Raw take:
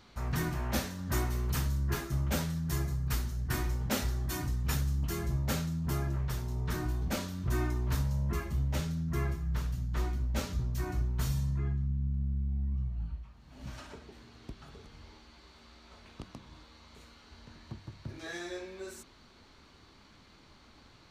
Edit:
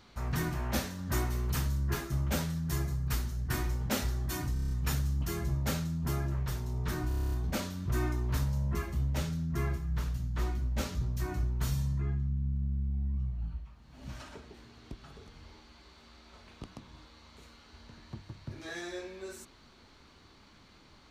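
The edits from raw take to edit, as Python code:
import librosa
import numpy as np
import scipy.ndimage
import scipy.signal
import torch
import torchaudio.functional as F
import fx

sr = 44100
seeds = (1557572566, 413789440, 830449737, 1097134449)

y = fx.edit(x, sr, fx.stutter(start_s=4.53, slice_s=0.03, count=7),
    fx.stutter(start_s=6.9, slice_s=0.03, count=9), tone=tone)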